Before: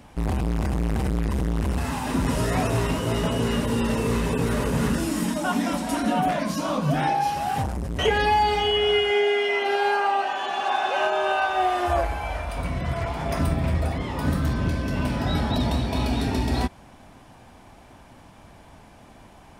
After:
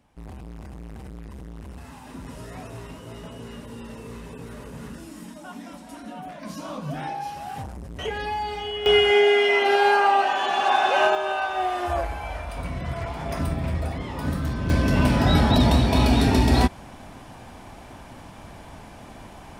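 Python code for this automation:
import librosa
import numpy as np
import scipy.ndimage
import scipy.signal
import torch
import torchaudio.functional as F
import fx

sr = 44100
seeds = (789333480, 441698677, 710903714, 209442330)

y = fx.gain(x, sr, db=fx.steps((0.0, -15.0), (6.43, -8.5), (8.86, 4.0), (11.15, -3.0), (14.7, 6.0)))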